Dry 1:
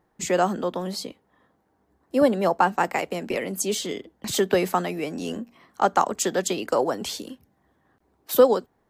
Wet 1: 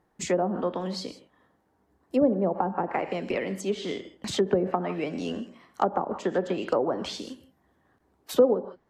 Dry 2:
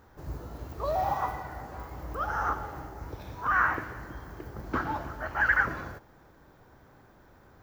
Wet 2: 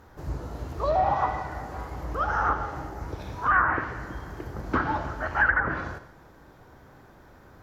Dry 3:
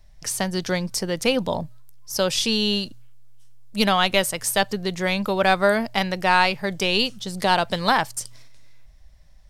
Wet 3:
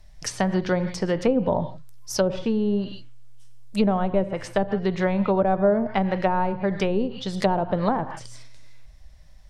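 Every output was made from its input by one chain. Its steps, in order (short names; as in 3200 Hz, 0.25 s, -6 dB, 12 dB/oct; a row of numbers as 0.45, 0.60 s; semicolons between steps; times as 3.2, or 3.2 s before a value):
non-linear reverb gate 0.18 s flat, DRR 11.5 dB; treble ducked by the level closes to 550 Hz, closed at -17 dBFS; normalise peaks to -9 dBFS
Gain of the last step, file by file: -1.5, +4.5, +2.5 dB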